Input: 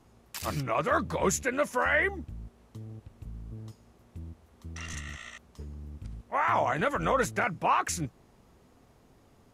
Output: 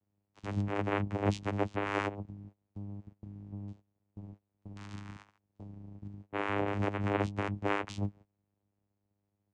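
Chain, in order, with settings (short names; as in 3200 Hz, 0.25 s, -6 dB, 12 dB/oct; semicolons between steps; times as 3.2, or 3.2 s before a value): vocoder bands 4, saw 101 Hz; gate -46 dBFS, range -19 dB; gain -4 dB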